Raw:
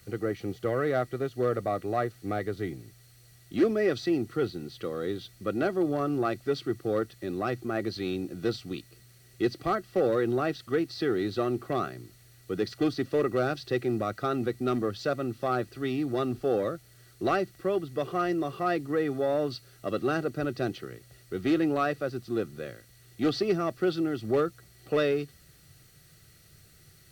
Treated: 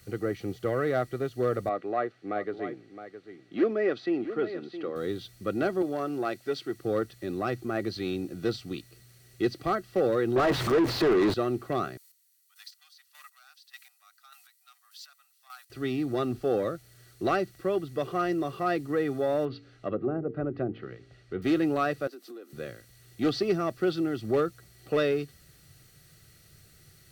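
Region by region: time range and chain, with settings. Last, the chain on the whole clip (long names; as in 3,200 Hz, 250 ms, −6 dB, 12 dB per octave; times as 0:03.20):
0:01.69–0:04.96: band-pass filter 260–2,800 Hz + single-tap delay 665 ms −11.5 dB
0:05.82–0:06.79: high-pass filter 350 Hz 6 dB per octave + notch filter 1,200 Hz, Q 11
0:10.36–0:11.34: converter with a step at zero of −31.5 dBFS + mid-hump overdrive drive 28 dB, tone 1,000 Hz, clips at −15 dBFS
0:11.97–0:15.70: Butterworth high-pass 800 Hz 48 dB per octave + first difference + square-wave tremolo 1.7 Hz, depth 65%, duty 25%
0:19.45–0:21.42: low-pass filter 3,700 Hz + treble cut that deepens with the level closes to 600 Hz, closed at −24.5 dBFS + hum removal 56.8 Hz, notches 8
0:22.07–0:22.53: Butterworth high-pass 260 Hz 48 dB per octave + parametric band 13,000 Hz +6 dB 0.35 octaves + downward compressor 5 to 1, threshold −42 dBFS
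whole clip: no processing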